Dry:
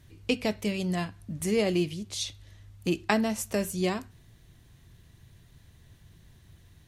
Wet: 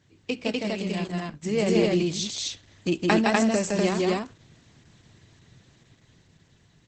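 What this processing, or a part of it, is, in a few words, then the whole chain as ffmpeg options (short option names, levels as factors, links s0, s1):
video call: -filter_complex "[0:a]aecho=1:1:163.3|247.8:0.794|0.891,asettb=1/sr,asplit=3[s0][s1][s2];[s0]atrim=end=1.044[s3];[s1]atrim=start=1.04:end=1.89,asetpts=PTS-STARTPTS,afade=t=in:d=0.004:c=qsin,afade=t=out:st=0.846:d=0.004:c=qsin,agate=range=0.0224:threshold=0.0316:ratio=3:detection=peak[s4];[s2]atrim=start=1.886[s5];[s3][s4]acrossfade=d=0.004:c1=hsin:c2=qsin[s6];[s6][s5]acrossfade=d=0.004:c1=qsin:c2=hsin,highpass=140,dynaudnorm=f=250:g=13:m=2,volume=0.794" -ar 48000 -c:a libopus -b:a 12k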